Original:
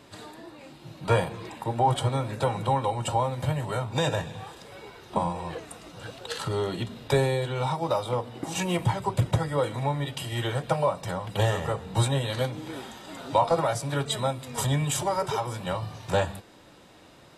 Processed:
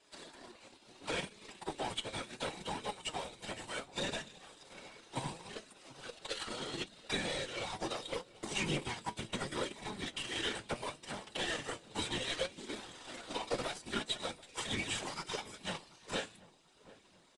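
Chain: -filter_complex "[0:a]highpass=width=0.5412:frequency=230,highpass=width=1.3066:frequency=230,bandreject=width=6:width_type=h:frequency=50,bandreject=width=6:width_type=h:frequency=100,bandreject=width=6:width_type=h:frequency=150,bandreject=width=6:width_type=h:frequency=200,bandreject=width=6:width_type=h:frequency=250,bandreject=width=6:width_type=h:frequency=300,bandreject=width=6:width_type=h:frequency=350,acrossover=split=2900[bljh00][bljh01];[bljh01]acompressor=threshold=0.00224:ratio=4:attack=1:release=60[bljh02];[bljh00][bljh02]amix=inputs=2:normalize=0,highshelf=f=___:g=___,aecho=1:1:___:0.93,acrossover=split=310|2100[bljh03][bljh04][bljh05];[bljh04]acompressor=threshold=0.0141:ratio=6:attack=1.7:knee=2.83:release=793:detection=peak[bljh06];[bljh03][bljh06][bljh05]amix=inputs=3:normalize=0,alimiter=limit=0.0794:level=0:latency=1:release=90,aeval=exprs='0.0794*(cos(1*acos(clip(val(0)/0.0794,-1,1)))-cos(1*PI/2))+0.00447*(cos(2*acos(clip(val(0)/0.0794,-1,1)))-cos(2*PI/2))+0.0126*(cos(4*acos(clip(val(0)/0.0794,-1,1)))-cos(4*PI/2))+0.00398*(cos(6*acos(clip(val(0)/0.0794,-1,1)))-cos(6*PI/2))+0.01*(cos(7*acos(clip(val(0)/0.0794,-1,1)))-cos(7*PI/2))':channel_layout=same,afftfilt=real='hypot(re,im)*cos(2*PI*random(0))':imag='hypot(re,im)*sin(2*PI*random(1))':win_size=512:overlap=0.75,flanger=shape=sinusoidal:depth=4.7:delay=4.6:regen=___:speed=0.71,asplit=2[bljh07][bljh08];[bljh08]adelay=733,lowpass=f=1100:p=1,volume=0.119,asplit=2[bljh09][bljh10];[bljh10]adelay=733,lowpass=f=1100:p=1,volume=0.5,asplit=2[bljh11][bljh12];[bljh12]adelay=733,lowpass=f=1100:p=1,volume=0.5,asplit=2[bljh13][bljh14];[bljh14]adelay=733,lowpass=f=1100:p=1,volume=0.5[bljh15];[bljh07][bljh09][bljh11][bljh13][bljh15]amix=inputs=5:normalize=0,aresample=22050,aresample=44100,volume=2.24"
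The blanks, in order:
2300, 9.5, 6.2, 67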